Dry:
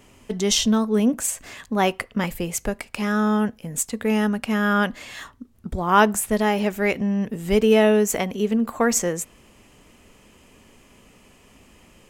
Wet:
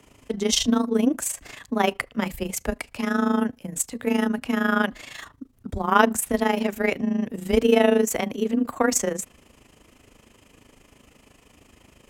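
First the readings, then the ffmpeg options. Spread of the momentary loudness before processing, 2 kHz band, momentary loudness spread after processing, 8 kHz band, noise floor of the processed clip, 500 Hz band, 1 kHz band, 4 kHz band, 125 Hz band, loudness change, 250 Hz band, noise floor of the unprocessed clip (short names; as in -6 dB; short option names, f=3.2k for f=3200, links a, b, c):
13 LU, -1.5 dB, 13 LU, -2.0 dB, -58 dBFS, -2.0 dB, -2.0 dB, -1.5 dB, -6.5 dB, -2.0 dB, -1.5 dB, -54 dBFS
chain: -af "afreqshift=19,tremolo=f=26:d=0.75,volume=1.5dB"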